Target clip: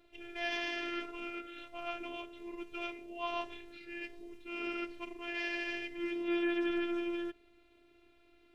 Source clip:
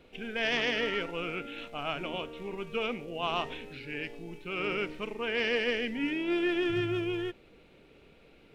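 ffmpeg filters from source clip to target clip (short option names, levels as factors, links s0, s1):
-af "afftfilt=real='hypot(re,im)*cos(PI*b)':imag='0':win_size=512:overlap=0.75,aeval=exprs='0.126*(cos(1*acos(clip(val(0)/0.126,-1,1)))-cos(1*PI/2))+0.00158*(cos(7*acos(clip(val(0)/0.126,-1,1)))-cos(7*PI/2))':c=same,volume=0.708"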